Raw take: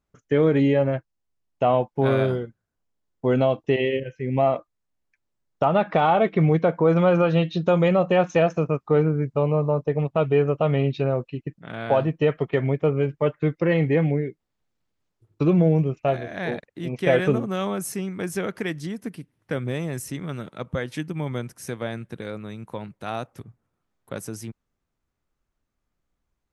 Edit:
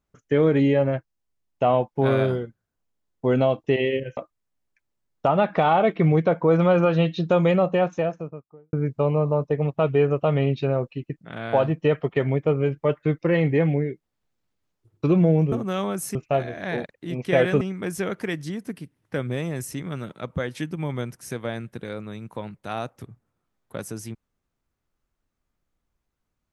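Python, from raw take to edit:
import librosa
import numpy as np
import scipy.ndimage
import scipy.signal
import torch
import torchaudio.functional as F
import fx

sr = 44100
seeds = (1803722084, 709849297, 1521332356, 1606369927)

y = fx.studio_fade_out(x, sr, start_s=7.81, length_s=1.29)
y = fx.edit(y, sr, fx.cut(start_s=4.17, length_s=0.37),
    fx.move(start_s=17.35, length_s=0.63, to_s=15.89), tone=tone)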